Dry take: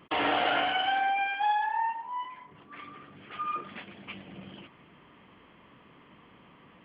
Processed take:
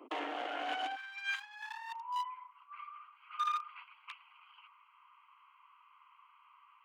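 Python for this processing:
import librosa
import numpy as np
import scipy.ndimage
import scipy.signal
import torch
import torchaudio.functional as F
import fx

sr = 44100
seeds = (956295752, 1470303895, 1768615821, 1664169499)

y = fx.wiener(x, sr, points=25)
y = fx.over_compress(y, sr, threshold_db=-37.0, ratio=-1.0)
y = fx.steep_highpass(y, sr, hz=fx.steps((0.0, 250.0), (0.95, 1000.0)), slope=72)
y = y * librosa.db_to_amplitude(1.0)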